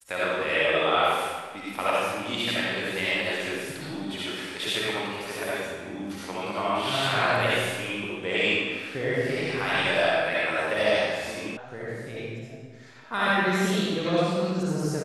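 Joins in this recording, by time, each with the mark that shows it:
11.57 sound cut off

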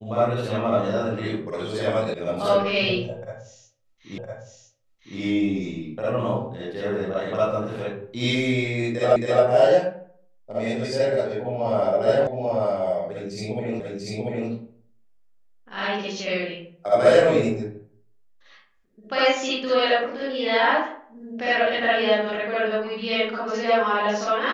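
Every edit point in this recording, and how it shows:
2.14 sound cut off
4.18 repeat of the last 1.01 s
9.16 repeat of the last 0.27 s
12.27 sound cut off
13.8 repeat of the last 0.69 s

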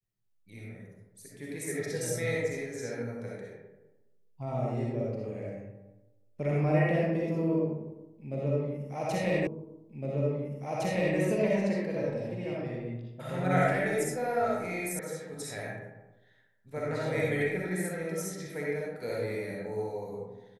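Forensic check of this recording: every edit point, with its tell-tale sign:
9.47 repeat of the last 1.71 s
14.99 sound cut off

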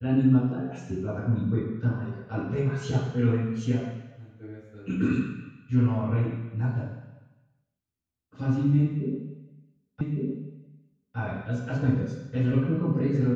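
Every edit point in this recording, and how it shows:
10.01 repeat of the last 1.16 s

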